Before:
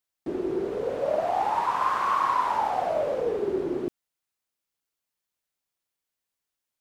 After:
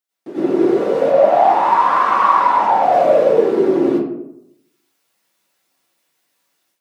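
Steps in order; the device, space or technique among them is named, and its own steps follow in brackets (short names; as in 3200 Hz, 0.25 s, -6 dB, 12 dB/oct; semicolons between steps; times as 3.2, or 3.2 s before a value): reverb removal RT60 0.77 s; 1.01–2.83 high shelf 4900 Hz -9.5 dB; far laptop microphone (reverb RT60 0.70 s, pre-delay 85 ms, DRR -9 dB; HPF 190 Hz 12 dB/oct; AGC gain up to 14.5 dB); gain -1 dB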